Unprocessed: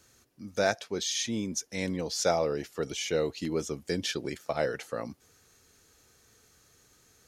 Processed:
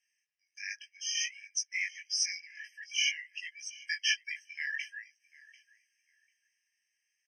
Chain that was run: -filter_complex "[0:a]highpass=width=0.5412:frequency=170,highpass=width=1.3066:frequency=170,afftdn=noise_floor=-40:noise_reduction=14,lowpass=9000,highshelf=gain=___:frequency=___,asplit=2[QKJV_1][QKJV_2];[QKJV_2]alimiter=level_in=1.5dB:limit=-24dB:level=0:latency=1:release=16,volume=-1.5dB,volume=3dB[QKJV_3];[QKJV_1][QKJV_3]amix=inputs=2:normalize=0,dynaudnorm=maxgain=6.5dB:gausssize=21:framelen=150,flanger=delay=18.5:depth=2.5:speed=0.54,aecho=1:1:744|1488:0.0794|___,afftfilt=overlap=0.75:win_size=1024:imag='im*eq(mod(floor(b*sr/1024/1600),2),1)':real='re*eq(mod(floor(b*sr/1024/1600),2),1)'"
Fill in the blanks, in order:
-11, 6600, 0.0143